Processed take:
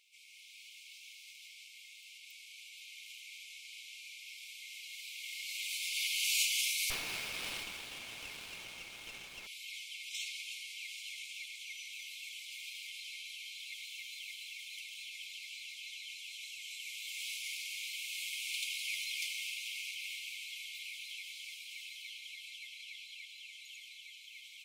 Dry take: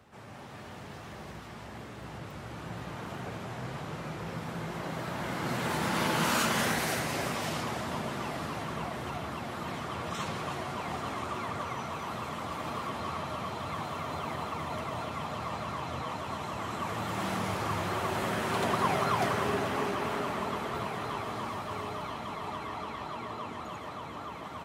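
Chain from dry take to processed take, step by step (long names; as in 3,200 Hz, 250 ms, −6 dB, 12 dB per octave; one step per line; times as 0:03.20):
linear-phase brick-wall high-pass 2,100 Hz
0:06.90–0:09.47: windowed peak hold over 5 samples
level +2 dB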